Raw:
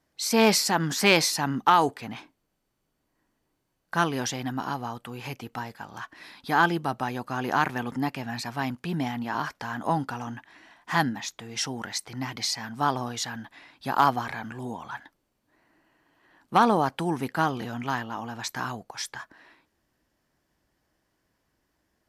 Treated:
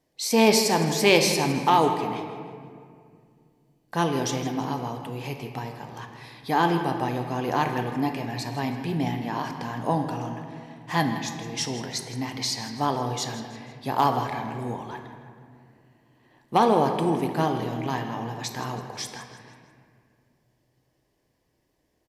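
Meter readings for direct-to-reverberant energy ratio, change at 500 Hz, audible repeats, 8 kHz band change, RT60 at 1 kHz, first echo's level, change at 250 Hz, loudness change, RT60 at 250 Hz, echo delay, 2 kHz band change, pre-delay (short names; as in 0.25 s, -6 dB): 4.0 dB, +4.5 dB, 3, +0.5 dB, 2.0 s, -14.0 dB, +2.5 dB, +1.0 dB, 2.9 s, 0.162 s, -2.5 dB, 6 ms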